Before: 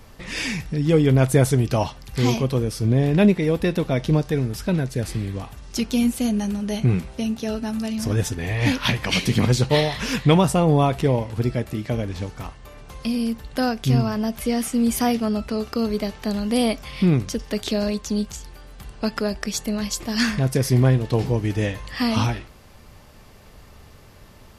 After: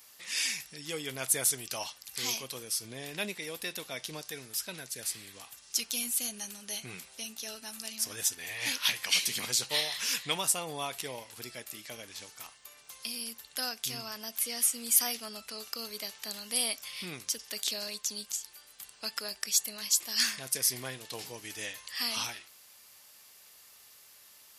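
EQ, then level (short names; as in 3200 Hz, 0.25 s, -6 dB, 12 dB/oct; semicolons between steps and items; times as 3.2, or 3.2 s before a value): differentiator; +3.0 dB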